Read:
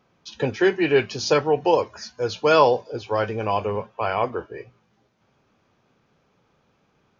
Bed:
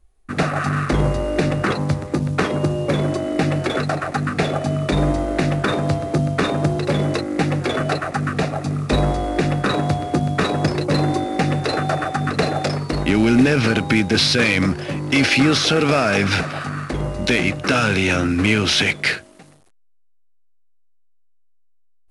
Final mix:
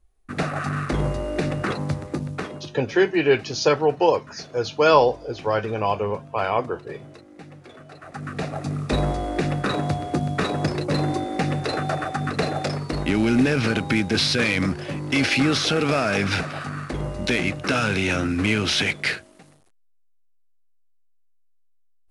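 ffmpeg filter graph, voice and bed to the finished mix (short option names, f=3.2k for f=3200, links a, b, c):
-filter_complex "[0:a]adelay=2350,volume=0.5dB[a];[1:a]volume=13.5dB,afade=t=out:st=2.06:d=0.66:silence=0.125893,afade=t=in:st=7.94:d=0.72:silence=0.112202[b];[a][b]amix=inputs=2:normalize=0"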